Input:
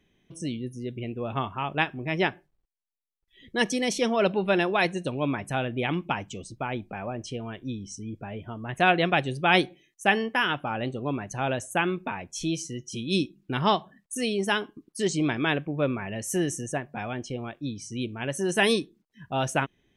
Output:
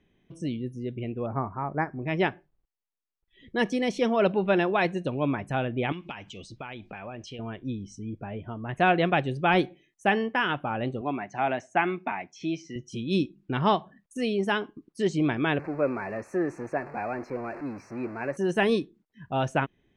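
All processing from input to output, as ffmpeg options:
-filter_complex "[0:a]asettb=1/sr,asplit=3[a][b][c];[a]atrim=end=1.264[d];[b]atrim=start=1.26:end=2.02,asetpts=PTS-STARTPTS,afade=t=in:d=0.004:c=qsin,afade=t=out:st=0.756:d=0.004:c=qsin,asuperstop=centerf=3200:order=20:qfactor=1.6,equalizer=f=2.6k:t=o:w=1.6:g=-6[e];[c]atrim=start=2.016[f];[d][e]acrossfade=d=0.004:c1=hsin:c2=qsin[g];[g][f]acrossfade=d=0.004:c1=qsin:c2=hsin,asettb=1/sr,asplit=3[h][i][j];[h]atrim=end=5.924[k];[i]atrim=start=5.92:end=7.39,asetpts=PTS-STARTPTS,afade=t=in:d=0.004:c=qsin,afade=t=out:st=1.466:d=0.004:c=qsin,equalizer=f=3.8k:t=o:w=2.4:g=14.5,acompressor=threshold=-38dB:ratio=3:attack=3.2:release=140:knee=1:detection=peak[l];[j]atrim=start=7.386[m];[k][l]acrossfade=d=0.004:c1=hsin:c2=qsin[n];[n][m]acrossfade=d=0.004:c1=qsin:c2=hsin,asettb=1/sr,asplit=3[o][p][q];[o]atrim=end=11.014[r];[p]atrim=start=11.01:end=12.76,asetpts=PTS-STARTPTS,afade=t=in:d=0.004:c=qsin,afade=t=out:st=1.746:d=0.004:c=qsin,highpass=220,equalizer=f=500:t=q:w=4:g=-10,equalizer=f=740:t=q:w=4:g=7,equalizer=f=2.1k:t=q:w=4:g=10,equalizer=f=5.4k:t=q:w=4:g=6,lowpass=f=6.6k:w=0.5412,lowpass=f=6.6k:w=1.3066,acrossover=split=2600[s][t];[t]acompressor=threshold=-40dB:ratio=4:attack=1:release=60[u];[s][u]amix=inputs=2:normalize=0[v];[q]atrim=start=12.756[w];[r][v]acrossfade=d=0.004:c1=hsin:c2=qsin[x];[x][w]acrossfade=d=0.004:c1=qsin:c2=hsin,asettb=1/sr,asplit=3[y][z][aa];[y]atrim=end=15.594[ab];[z]atrim=start=15.59:end=18.37,asetpts=PTS-STARTPTS,afade=t=in:d=0.004:c=qsin,afade=t=out:st=2.776:d=0.004:c=qsin,aeval=exprs='val(0)+0.5*0.0237*sgn(val(0))':c=same,asuperstop=centerf=3300:order=12:qfactor=2.3,acrossover=split=280 2600:gain=0.224 1 0.141[ac][ad][ae];[ac][ad][ae]amix=inputs=3:normalize=0[af];[aa]atrim=start=18.366[ag];[ab][af]acrossfade=d=0.004:c1=hsin:c2=qsin[ah];[ah][ag]acrossfade=d=0.004:c1=qsin:c2=hsin,deesser=0.65,aemphasis=mode=reproduction:type=75fm"

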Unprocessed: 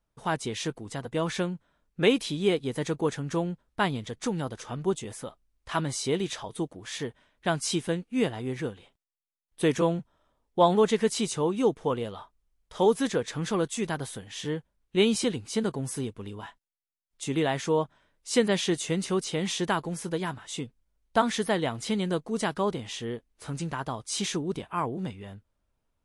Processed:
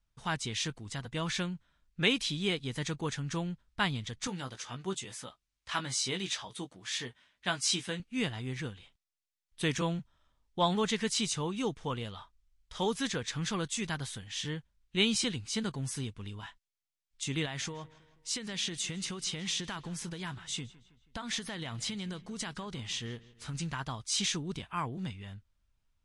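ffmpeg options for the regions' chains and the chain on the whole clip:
-filter_complex "[0:a]asettb=1/sr,asplit=3[a][b][c];[a]atrim=end=4.274[d];[b]atrim=start=4.27:end=8,asetpts=PTS-STARTPTS,afade=t=in:d=0.004:c=qsin,afade=t=out:st=3.726:d=0.004:c=qsin,highpass=f=260:p=1,asplit=2[e][f];[f]adelay=16,volume=-7dB[g];[e][g]amix=inputs=2:normalize=0,atrim=end_sample=164493[h];[c]atrim=start=7.996[i];[d][h]acrossfade=d=0.004:c1=hsin:c2=qsin[j];[j][i]acrossfade=d=0.004:c1=qsin:c2=hsin,asettb=1/sr,asplit=3[k][l][m];[k]atrim=end=17.454[n];[l]atrim=start=17.45:end=23.55,asetpts=PTS-STARTPTS,afade=t=in:d=0.004:c=qsin,afade=t=out:st=6.096:d=0.004:c=qsin,acompressor=threshold=-29dB:ratio=10:attack=3.2:release=140:knee=1:detection=peak,asplit=2[o][p];[p]adelay=161,lowpass=f=4.3k:p=1,volume=-19.5dB,asplit=2[q][r];[r]adelay=161,lowpass=f=4.3k:p=1,volume=0.52,asplit=2[s][t];[t]adelay=161,lowpass=f=4.3k:p=1,volume=0.52,asplit=2[u][v];[v]adelay=161,lowpass=f=4.3k:p=1,volume=0.52[w];[o][q][s][u][w]amix=inputs=5:normalize=0,atrim=end_sample=269010[x];[m]atrim=start=23.546[y];[n][x]acrossfade=d=0.004:c1=hsin:c2=qsin[z];[z][y]acrossfade=d=0.004:c1=qsin:c2=hsin,lowpass=7.1k,equalizer=f=470:t=o:w=2.7:g=-15,volume=3.5dB"

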